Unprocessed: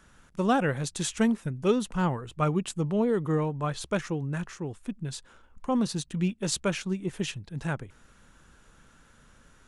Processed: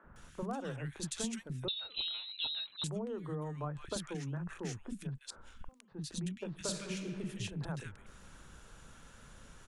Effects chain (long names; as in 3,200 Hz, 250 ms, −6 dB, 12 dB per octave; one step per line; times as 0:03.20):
downward compressor 10 to 1, threshold −38 dBFS, peak gain reduction 19.5 dB
0:05.14–0:05.88: gate with flip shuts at −37 dBFS, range −27 dB
three-band delay without the direct sound mids, lows, highs 40/160 ms, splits 270/1,600 Hz
0:01.68–0:02.84: voice inversion scrambler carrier 4,000 Hz
0:06.48–0:07.26: thrown reverb, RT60 1.9 s, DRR 4.5 dB
level +3 dB